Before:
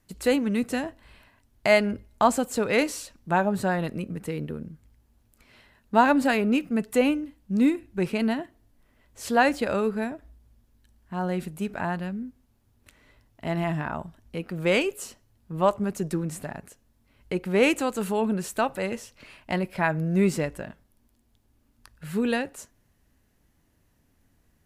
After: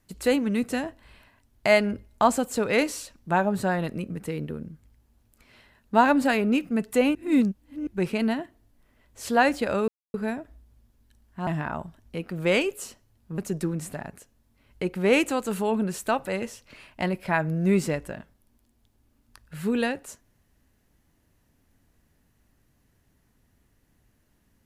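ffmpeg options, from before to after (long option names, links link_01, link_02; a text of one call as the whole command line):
ffmpeg -i in.wav -filter_complex "[0:a]asplit=6[link_01][link_02][link_03][link_04][link_05][link_06];[link_01]atrim=end=7.152[link_07];[link_02]atrim=start=7.148:end=7.872,asetpts=PTS-STARTPTS,areverse[link_08];[link_03]atrim=start=7.868:end=9.88,asetpts=PTS-STARTPTS,afade=type=out:start_time=2.008:duration=0.004:curve=hsin,apad=pad_dur=0.26[link_09];[link_04]atrim=start=9.88:end=11.212,asetpts=PTS-STARTPTS,afade=type=in:duration=0.004:curve=hsin[link_10];[link_05]atrim=start=13.668:end=15.582[link_11];[link_06]atrim=start=15.878[link_12];[link_07][link_08]acrossfade=duration=0.004:curve1=hsin:curve2=hsin[link_13];[link_09][link_10]concat=n=2:v=0:a=1[link_14];[link_13][link_14]acrossfade=duration=0.004:curve1=hsin:curve2=hsin[link_15];[link_15][link_11]acrossfade=duration=0.004:curve1=hsin:curve2=hsin[link_16];[link_16][link_12]acrossfade=duration=0.004:curve1=hsin:curve2=hsin" out.wav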